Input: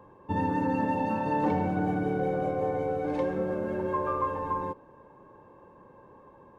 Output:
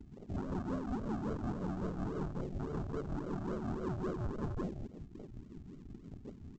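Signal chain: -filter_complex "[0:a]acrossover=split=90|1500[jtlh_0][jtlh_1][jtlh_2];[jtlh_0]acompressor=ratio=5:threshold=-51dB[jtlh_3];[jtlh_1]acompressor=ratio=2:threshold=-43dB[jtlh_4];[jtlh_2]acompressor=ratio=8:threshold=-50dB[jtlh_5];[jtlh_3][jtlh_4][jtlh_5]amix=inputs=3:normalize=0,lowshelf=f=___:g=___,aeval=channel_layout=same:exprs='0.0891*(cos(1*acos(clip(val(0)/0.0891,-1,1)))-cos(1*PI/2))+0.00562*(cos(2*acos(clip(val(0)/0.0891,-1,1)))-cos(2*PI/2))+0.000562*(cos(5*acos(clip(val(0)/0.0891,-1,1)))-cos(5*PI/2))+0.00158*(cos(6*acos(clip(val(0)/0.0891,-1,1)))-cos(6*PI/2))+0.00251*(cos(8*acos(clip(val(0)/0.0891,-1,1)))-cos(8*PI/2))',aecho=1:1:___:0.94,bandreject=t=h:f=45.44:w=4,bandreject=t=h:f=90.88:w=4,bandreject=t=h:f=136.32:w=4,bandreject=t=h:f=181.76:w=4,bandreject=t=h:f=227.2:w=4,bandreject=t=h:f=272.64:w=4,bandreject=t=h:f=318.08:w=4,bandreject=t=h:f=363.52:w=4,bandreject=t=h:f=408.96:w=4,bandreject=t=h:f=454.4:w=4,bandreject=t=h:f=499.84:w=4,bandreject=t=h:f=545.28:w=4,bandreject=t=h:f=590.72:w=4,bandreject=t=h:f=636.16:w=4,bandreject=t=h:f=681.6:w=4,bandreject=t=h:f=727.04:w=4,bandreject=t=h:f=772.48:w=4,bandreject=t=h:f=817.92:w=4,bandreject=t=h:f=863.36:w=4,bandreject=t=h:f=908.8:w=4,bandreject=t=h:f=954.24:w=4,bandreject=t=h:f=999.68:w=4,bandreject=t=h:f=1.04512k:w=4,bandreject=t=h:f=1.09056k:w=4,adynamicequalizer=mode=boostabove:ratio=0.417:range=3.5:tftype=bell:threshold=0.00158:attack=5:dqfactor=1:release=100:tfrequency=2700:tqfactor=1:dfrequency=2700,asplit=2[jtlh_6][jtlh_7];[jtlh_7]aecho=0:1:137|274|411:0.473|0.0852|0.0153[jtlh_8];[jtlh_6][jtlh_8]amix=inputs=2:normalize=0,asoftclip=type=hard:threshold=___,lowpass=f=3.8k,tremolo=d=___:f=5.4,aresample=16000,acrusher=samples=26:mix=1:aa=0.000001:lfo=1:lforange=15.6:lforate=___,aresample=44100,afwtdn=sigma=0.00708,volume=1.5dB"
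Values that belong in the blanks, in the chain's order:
410, 5, 4.8, -34.5dB, 0.45, 3.6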